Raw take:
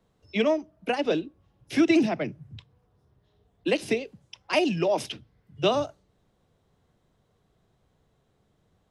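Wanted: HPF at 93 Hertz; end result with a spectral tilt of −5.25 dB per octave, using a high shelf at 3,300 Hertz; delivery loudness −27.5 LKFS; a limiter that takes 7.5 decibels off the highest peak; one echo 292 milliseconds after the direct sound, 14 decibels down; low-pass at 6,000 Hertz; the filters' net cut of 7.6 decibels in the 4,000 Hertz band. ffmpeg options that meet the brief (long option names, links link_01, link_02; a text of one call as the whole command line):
ffmpeg -i in.wav -af "highpass=93,lowpass=6000,highshelf=frequency=3300:gain=-6.5,equalizer=frequency=4000:width_type=o:gain=-6,alimiter=limit=-18dB:level=0:latency=1,aecho=1:1:292:0.2,volume=2.5dB" out.wav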